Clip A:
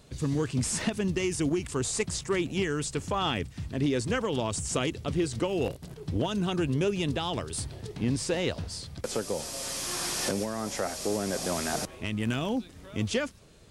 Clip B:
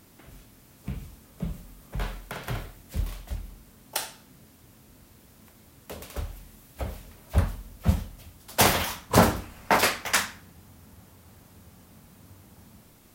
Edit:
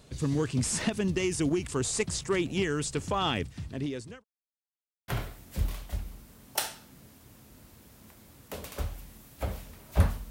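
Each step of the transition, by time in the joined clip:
clip A
3.44–4.24 s: fade out linear
4.24–5.08 s: mute
5.08 s: go over to clip B from 2.46 s

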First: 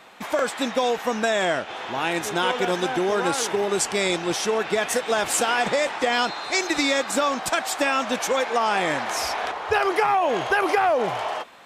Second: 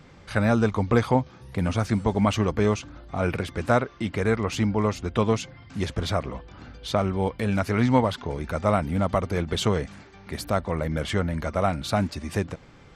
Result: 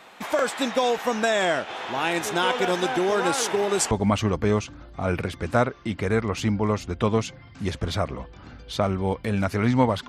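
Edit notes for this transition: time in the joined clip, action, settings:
first
3.91 s: go over to second from 2.06 s

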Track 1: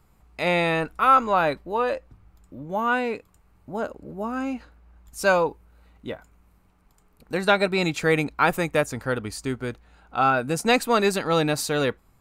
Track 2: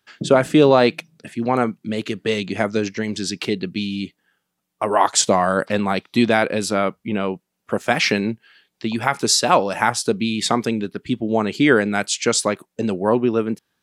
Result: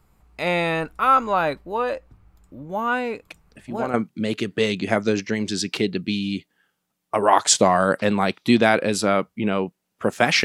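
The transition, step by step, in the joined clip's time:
track 1
3.30 s: add track 2 from 0.98 s 0.64 s -9.5 dB
3.94 s: go over to track 2 from 1.62 s

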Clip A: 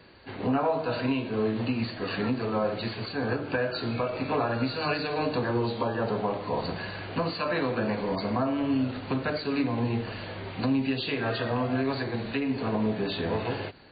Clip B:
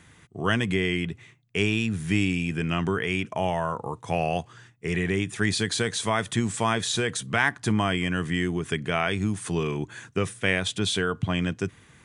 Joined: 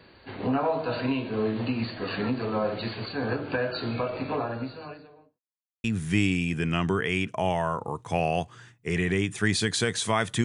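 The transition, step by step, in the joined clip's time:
clip A
3.94–5.40 s: studio fade out
5.40–5.84 s: mute
5.84 s: go over to clip B from 1.82 s

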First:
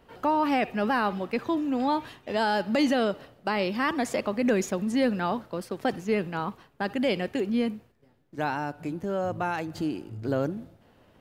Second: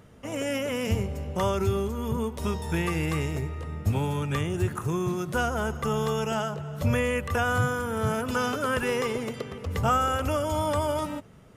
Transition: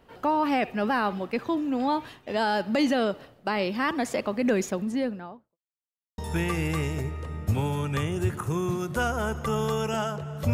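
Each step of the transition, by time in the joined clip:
first
4.66–5.58 s: studio fade out
5.58–6.18 s: mute
6.18 s: go over to second from 2.56 s

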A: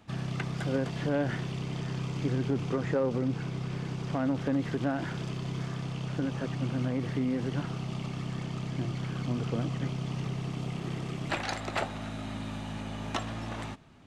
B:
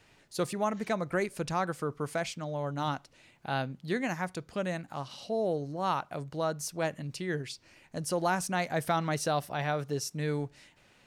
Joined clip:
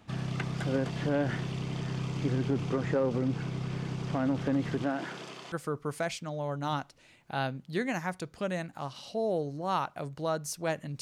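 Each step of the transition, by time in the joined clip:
A
4.82–5.52 s: high-pass 190 Hz -> 630 Hz
5.52 s: go over to B from 1.67 s

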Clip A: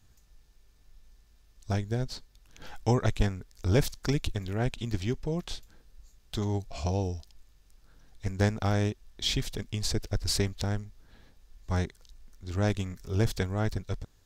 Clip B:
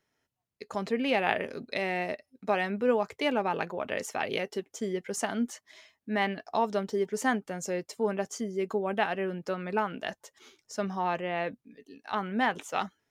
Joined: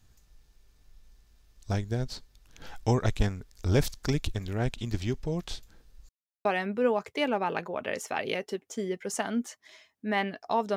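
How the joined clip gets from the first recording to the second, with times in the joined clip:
clip A
6.09–6.45 s: mute
6.45 s: go over to clip B from 2.49 s

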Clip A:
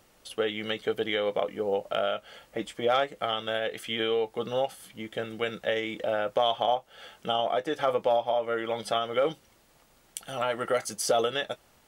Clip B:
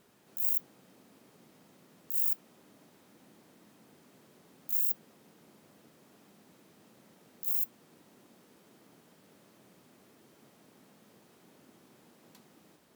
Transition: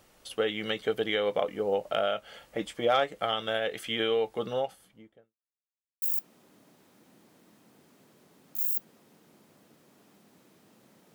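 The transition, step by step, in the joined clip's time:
clip A
4.26–5.35 s: studio fade out
5.35–6.02 s: mute
6.02 s: go over to clip B from 2.16 s

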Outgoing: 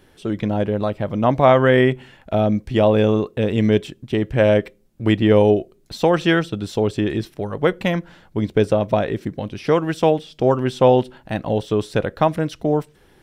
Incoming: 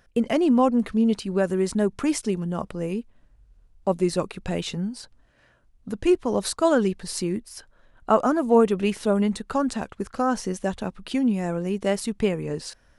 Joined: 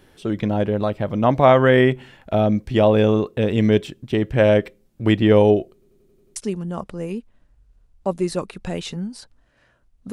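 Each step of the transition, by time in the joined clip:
outgoing
5.73 s: stutter in place 0.09 s, 7 plays
6.36 s: go over to incoming from 2.17 s

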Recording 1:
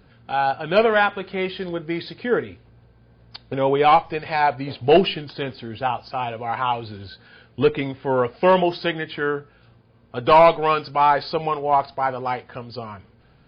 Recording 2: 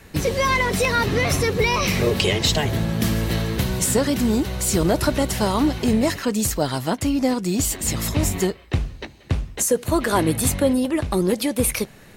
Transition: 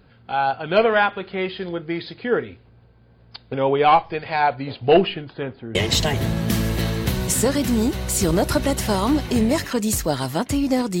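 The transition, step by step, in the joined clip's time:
recording 1
4.94–5.75 s: low-pass 3.8 kHz -> 1.3 kHz
5.75 s: go over to recording 2 from 2.27 s

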